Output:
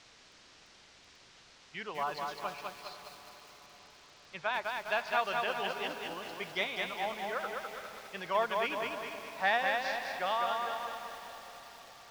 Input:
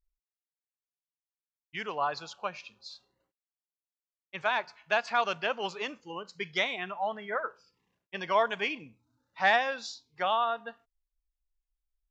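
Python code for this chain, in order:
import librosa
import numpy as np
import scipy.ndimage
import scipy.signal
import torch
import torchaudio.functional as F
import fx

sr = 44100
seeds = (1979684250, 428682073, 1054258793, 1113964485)

y = fx.echo_diffused(x, sr, ms=478, feedback_pct=58, wet_db=-12)
y = fx.quant_dither(y, sr, seeds[0], bits=8, dither='triangular')
y = scipy.signal.sosfilt(scipy.signal.butter(4, 5700.0, 'lowpass', fs=sr, output='sos'), y)
y = fx.echo_crushed(y, sr, ms=204, feedback_pct=55, bits=8, wet_db=-3)
y = F.gain(torch.from_numpy(y), -5.0).numpy()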